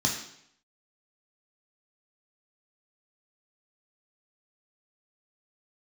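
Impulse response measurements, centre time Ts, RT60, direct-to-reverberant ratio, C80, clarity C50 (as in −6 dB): 30 ms, 0.70 s, −0.5 dB, 8.5 dB, 6.0 dB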